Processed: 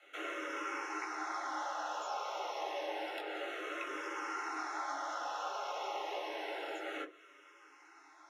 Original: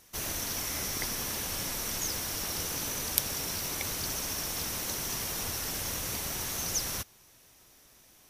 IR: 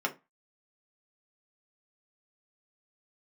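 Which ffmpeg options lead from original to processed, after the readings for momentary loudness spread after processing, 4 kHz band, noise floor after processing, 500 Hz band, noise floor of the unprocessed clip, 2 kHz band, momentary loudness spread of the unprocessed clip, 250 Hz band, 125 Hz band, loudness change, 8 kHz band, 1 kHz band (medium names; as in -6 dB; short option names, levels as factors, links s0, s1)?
12 LU, -12.5 dB, -61 dBFS, +1.5 dB, -59 dBFS, -1.5 dB, 3 LU, -5.5 dB, under -40 dB, -8.0 dB, -22.5 dB, +5.0 dB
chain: -filter_complex "[0:a]equalizer=f=74:w=0.53:g=-15,acrossover=split=84|1300|5800[s0][s1][s2][s3];[s0]acompressor=threshold=0.00158:ratio=4[s4];[s1]acompressor=threshold=0.00501:ratio=4[s5];[s2]acompressor=threshold=0.00316:ratio=4[s6];[s3]acompressor=threshold=0.00447:ratio=4[s7];[s4][s5][s6][s7]amix=inputs=4:normalize=0,afreqshift=290,adynamicsmooth=sensitivity=2.5:basefreq=3400,flanger=delay=17.5:depth=4.4:speed=2.9[s8];[1:a]atrim=start_sample=2205[s9];[s8][s9]afir=irnorm=-1:irlink=0,asplit=2[s10][s11];[s11]afreqshift=-0.29[s12];[s10][s12]amix=inputs=2:normalize=1,volume=2.11"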